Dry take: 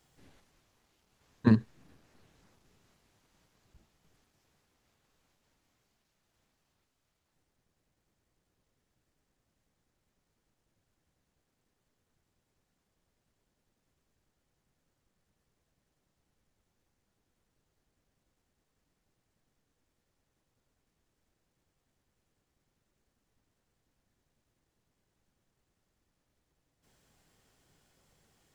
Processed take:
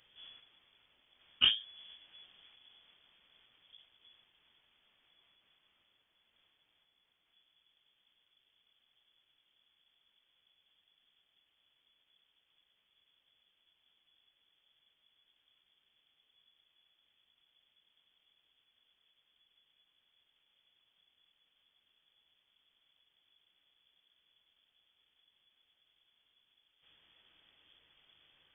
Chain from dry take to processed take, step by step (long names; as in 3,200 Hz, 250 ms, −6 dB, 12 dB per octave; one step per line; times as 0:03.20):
pitch-shifted copies added +12 semitones −4 dB
voice inversion scrambler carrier 3,400 Hz
every ending faded ahead of time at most 170 dB per second
level +1.5 dB